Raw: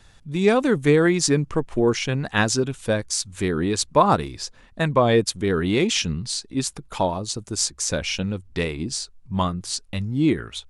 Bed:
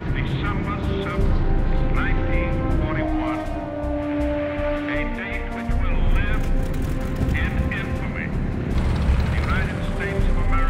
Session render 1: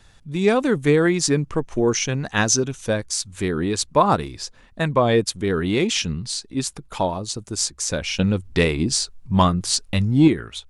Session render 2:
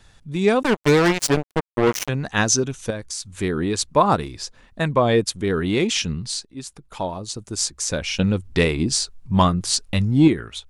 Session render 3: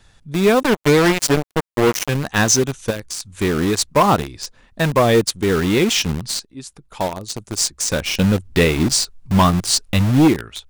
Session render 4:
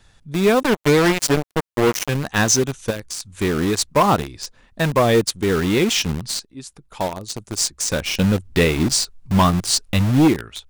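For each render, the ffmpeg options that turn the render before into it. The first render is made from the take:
-filter_complex "[0:a]asettb=1/sr,asplit=3[a][b][c];[a]atrim=end=1.634[d];[b]atrim=start=1.63:end=2.9,asetpts=PTS-STARTPTS,afade=t=in:d=0.004:c=qsin,afade=t=out:st=1.266:d=0.004:c=qsin,equalizer=f=6.1k:w=6:g=12.5[e];[c]atrim=start=2.896[f];[d][e]acrossfade=d=0.004:c1=hsin:c2=qsin[g];[g][f]acrossfade=d=0.004:c1=qsin:c2=hsin,asettb=1/sr,asplit=3[h][i][j];[h]atrim=end=8.194[k];[i]atrim=start=8.19:end=10.28,asetpts=PTS-STARTPTS,afade=t=in:d=0.004:c=qsin,afade=t=out:st=2.086:d=0.004:c=qsin,acontrast=78[l];[j]atrim=start=10.276[m];[k][l]acrossfade=d=0.004:c1=hsin:c2=qsin[n];[n][m]acrossfade=d=0.004:c1=qsin:c2=hsin"
-filter_complex "[0:a]asettb=1/sr,asplit=3[a][b][c];[a]atrim=end=0.634[d];[b]atrim=start=0.63:end=2.09,asetpts=PTS-STARTPTS,afade=t=in:d=0.004:c=qsin,afade=t=out:st=1.456:d=0.004:c=qsin,acrusher=bits=2:mix=0:aa=0.5[e];[c]atrim=start=2.086[f];[d][e]acrossfade=d=0.004:c1=hsin:c2=qsin[g];[g][f]acrossfade=d=0.004:c1=qsin:c2=hsin,asettb=1/sr,asplit=3[h][i][j];[h]atrim=end=2.904[k];[i]atrim=start=2.9:end=3.35,asetpts=PTS-STARTPTS,afade=t=in:d=0.004:c=qsin,afade=t=out:st=0.446:d=0.004:c=qsin,acompressor=threshold=-28dB:ratio=2.5:attack=3.2:release=140:knee=1:detection=peak[l];[j]atrim=start=3.346[m];[k][l]acrossfade=d=0.004:c1=hsin:c2=qsin[n];[n][m]acrossfade=d=0.004:c1=qsin:c2=hsin,asplit=2[o][p];[o]atrim=end=6.45,asetpts=PTS-STARTPTS,afade=t=out:st=6.446:d=0.004:c=hsin:silence=0.223872[q];[p]atrim=start=6.45,asetpts=PTS-STARTPTS,afade=t=in:d=1.22:silence=0.223872[r];[q][r]concat=n=2:v=0:a=1"
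-filter_complex "[0:a]asplit=2[a][b];[b]acrusher=bits=3:mix=0:aa=0.000001,volume=-4dB[c];[a][c]amix=inputs=2:normalize=0,volume=8dB,asoftclip=hard,volume=-8dB"
-af "volume=-1.5dB"

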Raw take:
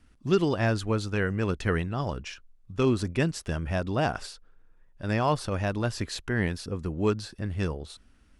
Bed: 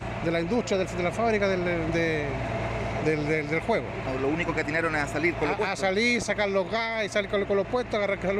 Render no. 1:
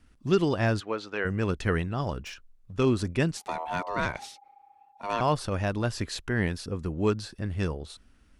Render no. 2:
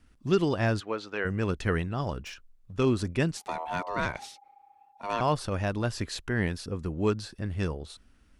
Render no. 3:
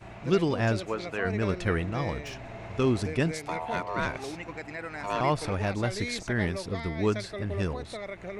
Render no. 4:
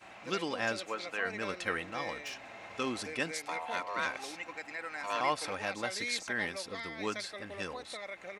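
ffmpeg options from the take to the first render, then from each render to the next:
-filter_complex "[0:a]asplit=3[a][b][c];[a]afade=t=out:st=0.79:d=0.02[d];[b]highpass=390,lowpass=4k,afade=t=in:st=0.79:d=0.02,afade=t=out:st=1.24:d=0.02[e];[c]afade=t=in:st=1.24:d=0.02[f];[d][e][f]amix=inputs=3:normalize=0,asettb=1/sr,asplit=3[g][h][i];[g]atrim=end=2.204[j];[h]atrim=start=2.2:end=2.73,asetpts=PTS-STARTPTS,afade=t=in:d=0.004:c=qsin,afade=t=out:st=0.526:d=0.004:c=qsin,asoftclip=type=hard:threshold=-35.5dB[k];[i]atrim=start=2.726[l];[j][k]acrossfade=d=0.004:c1=hsin:c2=qsin[m];[m][l]acrossfade=d=0.004:c1=qsin:c2=hsin,asettb=1/sr,asplit=3[n][o][p];[n]atrim=end=3.374[q];[o]atrim=start=3.37:end=5.21,asetpts=PTS-STARTPTS,afade=t=in:d=0.004:c=qsin,afade=t=out:st=1.836:d=0.004:c=qsin,aeval=exprs='val(0)*sin(2*PI*810*n/s)':c=same[r];[p]atrim=start=5.206[s];[q][r]acrossfade=d=0.004:c1=hsin:c2=qsin[t];[t][s]acrossfade=d=0.004:c1=qsin:c2=hsin"
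-af "volume=-1dB"
-filter_complex "[1:a]volume=-12dB[a];[0:a][a]amix=inputs=2:normalize=0"
-af "highpass=f=1.1k:p=1,aecho=1:1:3.8:0.35"

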